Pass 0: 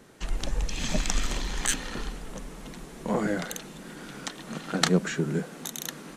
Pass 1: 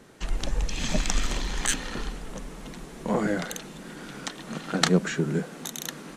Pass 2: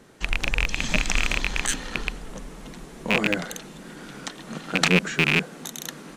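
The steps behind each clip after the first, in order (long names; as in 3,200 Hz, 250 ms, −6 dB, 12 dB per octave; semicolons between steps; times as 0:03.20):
high-shelf EQ 12,000 Hz −5.5 dB; level +1.5 dB
loose part that buzzes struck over −28 dBFS, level −7 dBFS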